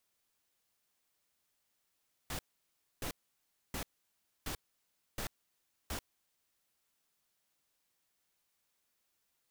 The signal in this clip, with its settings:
noise bursts pink, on 0.09 s, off 0.63 s, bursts 6, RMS −39 dBFS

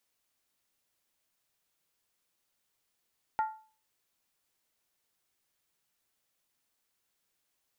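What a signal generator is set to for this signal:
struck skin, lowest mode 873 Hz, decay 0.40 s, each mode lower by 10 dB, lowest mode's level −23.5 dB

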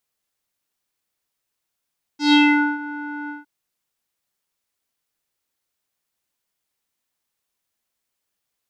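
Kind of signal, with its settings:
subtractive voice square D4 12 dB per octave, low-pass 1,400 Hz, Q 4.1, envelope 2 octaves, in 0.45 s, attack 140 ms, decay 0.45 s, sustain −19 dB, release 0.16 s, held 1.10 s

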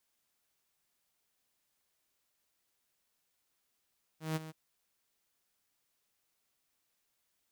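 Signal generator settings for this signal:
note with an ADSR envelope saw 158 Hz, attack 159 ms, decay 25 ms, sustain −13.5 dB, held 0.30 s, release 24 ms −28 dBFS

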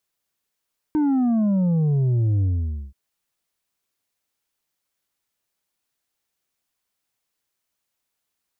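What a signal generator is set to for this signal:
bass drop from 310 Hz, over 1.98 s, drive 5 dB, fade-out 0.51 s, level −17.5 dB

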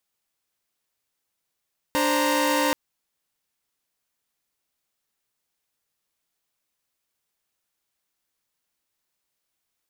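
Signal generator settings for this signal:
held notes D4/C5/A#5 saw, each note −22 dBFS 0.78 s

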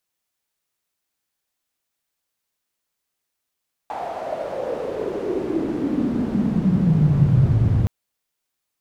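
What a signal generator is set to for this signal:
filter sweep on noise pink, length 3.97 s bandpass, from 790 Hz, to 100 Hz, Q 6.4, exponential, gain ramp +15 dB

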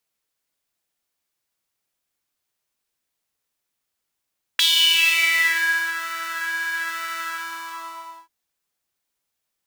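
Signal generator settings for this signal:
subtractive patch with pulse-width modulation E4, noise −12.5 dB, filter highpass, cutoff 890 Hz, Q 8, filter envelope 2 octaves, filter decay 1.20 s, attack 4.2 ms, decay 1.32 s, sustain −13.5 dB, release 1.10 s, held 2.59 s, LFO 1.1 Hz, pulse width 45%, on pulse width 6%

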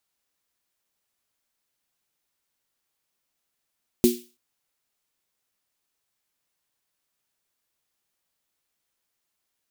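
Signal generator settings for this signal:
synth snare length 0.33 s, tones 240 Hz, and 360 Hz, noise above 2,600 Hz, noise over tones −11 dB, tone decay 0.28 s, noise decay 0.38 s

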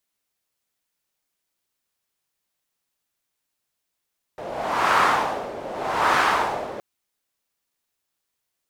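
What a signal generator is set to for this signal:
wind from filtered noise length 2.42 s, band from 550 Hz, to 1,200 Hz, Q 2.3, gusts 2, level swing 15.5 dB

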